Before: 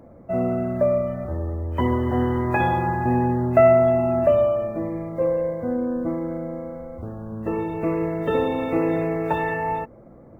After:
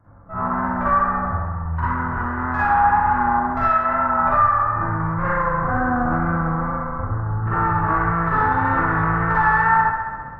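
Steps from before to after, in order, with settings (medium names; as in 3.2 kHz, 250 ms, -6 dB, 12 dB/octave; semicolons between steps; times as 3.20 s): level rider gain up to 10.5 dB; in parallel at -11 dB: hard clipper -16.5 dBFS, distortion -7 dB; on the sum: Chebyshev shaper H 6 -15 dB, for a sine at -0.5 dBFS; FFT filter 110 Hz 0 dB, 200 Hz -13 dB, 520 Hz -22 dB, 990 Hz -5 dB, 1.5 kHz 0 dB, 2.7 kHz -26 dB; compression 4:1, threshold -24 dBFS, peak gain reduction 10 dB; reverberation RT60 0.40 s, pre-delay 39 ms, DRR -8.5 dB; wow and flutter 35 cents; bass shelf 460 Hz -5 dB; feedback echo behind a band-pass 66 ms, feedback 75%, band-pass 1.1 kHz, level -7 dB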